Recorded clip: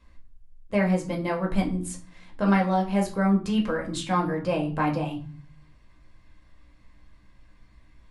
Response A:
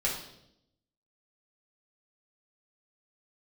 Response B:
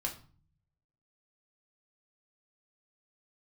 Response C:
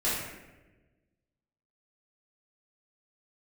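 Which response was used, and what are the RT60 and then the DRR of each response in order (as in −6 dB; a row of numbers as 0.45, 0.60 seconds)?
B; 0.80, 0.40, 1.2 seconds; −5.0, 0.0, −11.5 decibels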